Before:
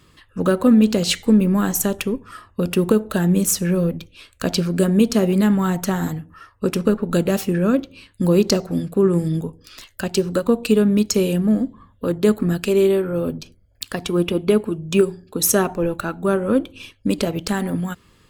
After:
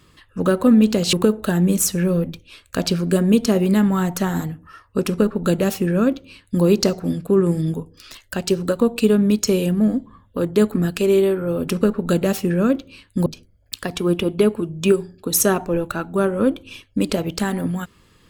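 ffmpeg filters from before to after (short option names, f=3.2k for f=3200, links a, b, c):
-filter_complex "[0:a]asplit=4[a][b][c][d];[a]atrim=end=1.132[e];[b]atrim=start=2.798:end=13.352[f];[c]atrim=start=6.718:end=8.302[g];[d]atrim=start=13.348[h];[e][f]acrossfade=d=0.004:c1=hsin:c2=hsin[i];[i][g]acrossfade=d=0.004:c1=hsin:c2=hsin[j];[j][h]acrossfade=d=0.004:c1=hsin:c2=hsin"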